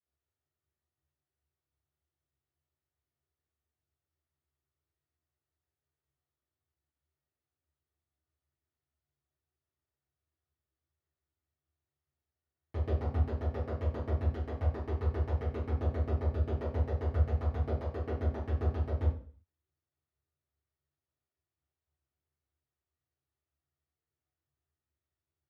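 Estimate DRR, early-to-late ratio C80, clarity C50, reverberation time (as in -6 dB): -13.5 dB, 9.5 dB, 3.5 dB, 0.45 s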